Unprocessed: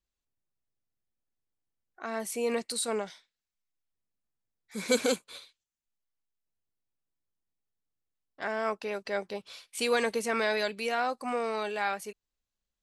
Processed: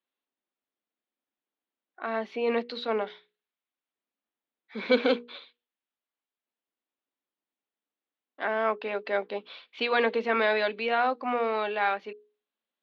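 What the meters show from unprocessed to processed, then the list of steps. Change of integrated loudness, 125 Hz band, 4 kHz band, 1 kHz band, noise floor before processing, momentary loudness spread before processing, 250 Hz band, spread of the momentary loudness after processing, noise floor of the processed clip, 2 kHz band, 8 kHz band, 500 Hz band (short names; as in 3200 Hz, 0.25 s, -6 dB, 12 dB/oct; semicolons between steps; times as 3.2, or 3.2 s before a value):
+3.0 dB, n/a, +0.5 dB, +4.5 dB, under -85 dBFS, 14 LU, +2.5 dB, 14 LU, under -85 dBFS, +4.0 dB, under -30 dB, +3.5 dB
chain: elliptic band-pass 240–3600 Hz, stop band 40 dB; air absorption 55 m; notches 60/120/180/240/300/360/420/480 Hz; gain +5 dB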